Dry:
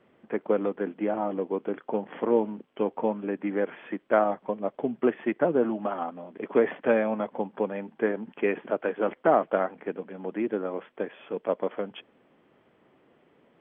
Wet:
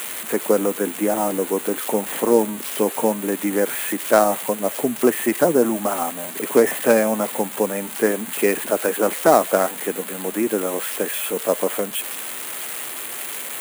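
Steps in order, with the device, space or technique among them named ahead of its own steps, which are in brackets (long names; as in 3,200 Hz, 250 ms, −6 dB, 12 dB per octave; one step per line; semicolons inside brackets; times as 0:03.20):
budget class-D amplifier (gap after every zero crossing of 0.1 ms; spike at every zero crossing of −19.5 dBFS)
level +7 dB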